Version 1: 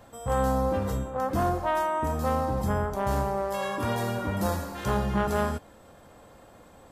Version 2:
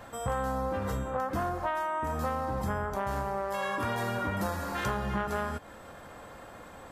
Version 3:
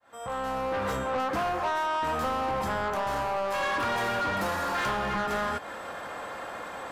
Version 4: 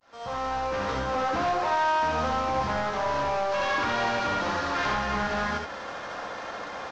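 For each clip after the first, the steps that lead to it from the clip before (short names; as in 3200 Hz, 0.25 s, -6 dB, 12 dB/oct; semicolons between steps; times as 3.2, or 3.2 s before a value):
bell 1600 Hz +7 dB 1.7 oct; compressor 6:1, threshold -31 dBFS, peak gain reduction 12 dB; gain +2.5 dB
opening faded in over 0.87 s; overdrive pedal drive 21 dB, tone 3700 Hz, clips at -19 dBFS; gain -2 dB
CVSD 32 kbps; on a send: early reflections 64 ms -5 dB, 78 ms -5.5 dB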